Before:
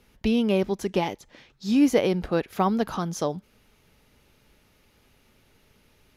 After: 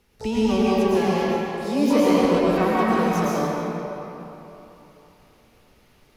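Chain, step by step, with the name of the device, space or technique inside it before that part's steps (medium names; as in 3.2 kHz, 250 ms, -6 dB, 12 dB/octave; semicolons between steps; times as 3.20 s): shimmer-style reverb (harmony voices +12 st -7 dB; reverberation RT60 3.3 s, pre-delay 101 ms, DRR -7 dB); trim -4.5 dB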